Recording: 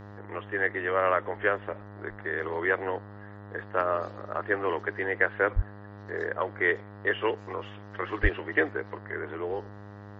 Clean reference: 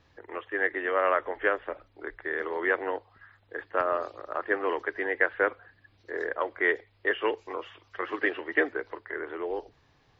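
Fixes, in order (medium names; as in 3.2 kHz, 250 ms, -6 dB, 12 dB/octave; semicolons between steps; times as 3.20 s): de-hum 102 Hz, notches 19; de-plosive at 5.55/8.22 s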